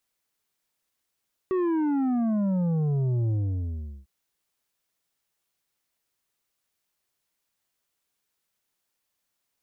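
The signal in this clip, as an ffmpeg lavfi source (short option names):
-f lavfi -i "aevalsrc='0.0708*clip((2.55-t)/0.76,0,1)*tanh(2.37*sin(2*PI*380*2.55/log(65/380)*(exp(log(65/380)*t/2.55)-1)))/tanh(2.37)':d=2.55:s=44100"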